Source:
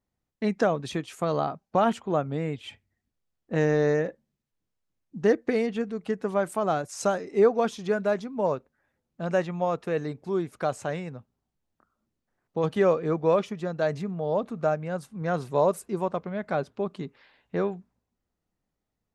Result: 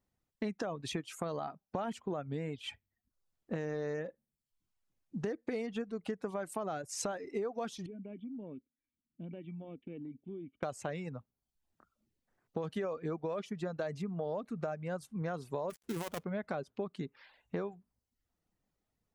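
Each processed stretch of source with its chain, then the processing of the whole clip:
0:07.86–0:10.63: formant resonators in series i + downward compressor, threshold −39 dBFS
0:15.70–0:16.24: gap after every zero crossing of 0.27 ms + high-shelf EQ 6,300 Hz +8 dB + compressor whose output falls as the input rises −31 dBFS
whole clip: reverb reduction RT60 0.56 s; brickwall limiter −17.5 dBFS; downward compressor 6 to 1, threshold −34 dBFS

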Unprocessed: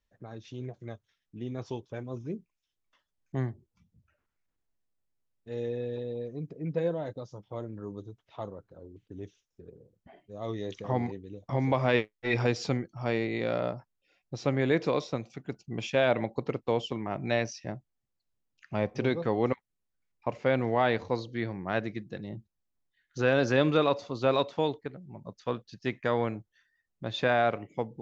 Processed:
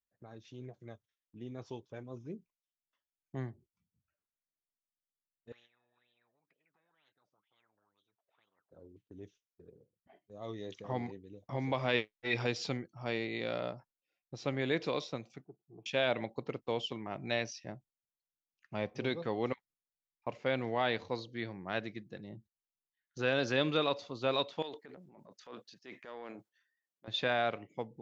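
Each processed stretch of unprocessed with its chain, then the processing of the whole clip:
0:05.52–0:08.71: downward compressor 2.5 to 1, threshold −36 dBFS + LFO wah 2.1 Hz 560–3,300 Hz, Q 11 + every bin compressed towards the loudest bin 10 to 1
0:15.44–0:15.86: transistor ladder low-pass 860 Hz, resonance 25% + low-shelf EQ 280 Hz −5.5 dB + phaser with its sweep stopped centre 360 Hz, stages 8
0:24.62–0:27.08: high-pass filter 290 Hz + downward compressor 10 to 1, threshold −33 dBFS + transient designer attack −8 dB, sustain +9 dB
whole clip: low-shelf EQ 62 Hz −10 dB; noise gate −54 dBFS, range −10 dB; dynamic equaliser 3,500 Hz, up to +8 dB, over −49 dBFS, Q 1; level −7 dB

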